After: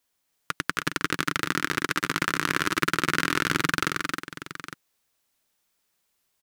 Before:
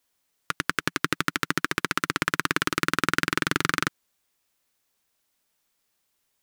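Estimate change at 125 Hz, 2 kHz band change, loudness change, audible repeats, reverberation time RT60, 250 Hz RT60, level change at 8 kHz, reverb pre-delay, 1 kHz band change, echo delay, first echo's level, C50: +0.5 dB, +0.5 dB, 0.0 dB, 3, no reverb, no reverb, +0.5 dB, no reverb, +0.5 dB, 268 ms, -5.0 dB, no reverb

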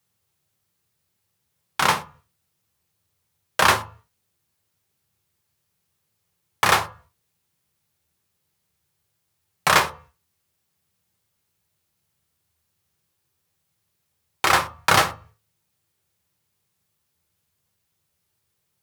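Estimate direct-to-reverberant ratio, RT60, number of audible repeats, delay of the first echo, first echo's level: 6.0 dB, 0.40 s, no echo, no echo, no echo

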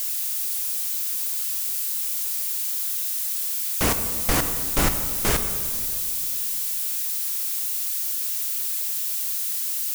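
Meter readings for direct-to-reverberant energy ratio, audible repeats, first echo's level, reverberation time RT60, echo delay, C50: 7.5 dB, no echo, no echo, 2.3 s, no echo, 8.5 dB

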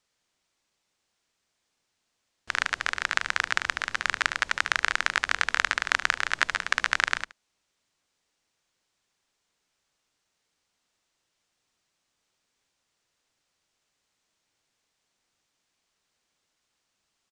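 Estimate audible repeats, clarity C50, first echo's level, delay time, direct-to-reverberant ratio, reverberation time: 1, no reverb, -17.5 dB, 73 ms, no reverb, no reverb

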